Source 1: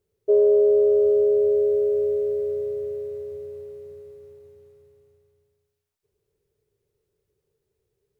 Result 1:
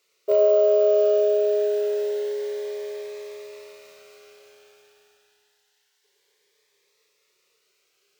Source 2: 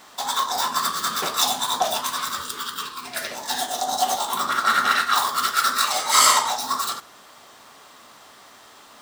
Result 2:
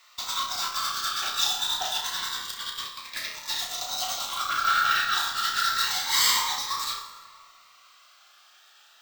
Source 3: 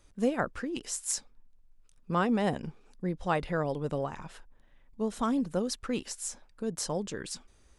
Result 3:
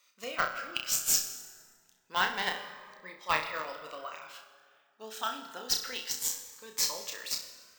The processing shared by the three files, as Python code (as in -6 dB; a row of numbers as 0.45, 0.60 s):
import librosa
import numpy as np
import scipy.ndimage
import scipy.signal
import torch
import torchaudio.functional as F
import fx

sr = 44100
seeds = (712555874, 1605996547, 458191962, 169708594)

p1 = scipy.signal.sosfilt(scipy.signal.butter(2, 1400.0, 'highpass', fs=sr, output='sos'), x)
p2 = fx.high_shelf(p1, sr, hz=4300.0, db=4.5)
p3 = fx.fuzz(p2, sr, gain_db=34.0, gate_db=-30.0)
p4 = p2 + (p3 * librosa.db_to_amplitude(-11.5))
p5 = fx.air_absorb(p4, sr, metres=96.0)
p6 = fx.rev_plate(p5, sr, seeds[0], rt60_s=2.1, hf_ratio=0.55, predelay_ms=95, drr_db=11.5)
p7 = np.repeat(p6[::2], 2)[:len(p6)]
p8 = fx.room_flutter(p7, sr, wall_m=5.5, rt60_s=0.34)
p9 = fx.notch_cascade(p8, sr, direction='rising', hz=0.27)
y = librosa.util.normalize(p9) * 10.0 ** (-9 / 20.0)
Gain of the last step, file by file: +22.0, -4.0, +6.5 dB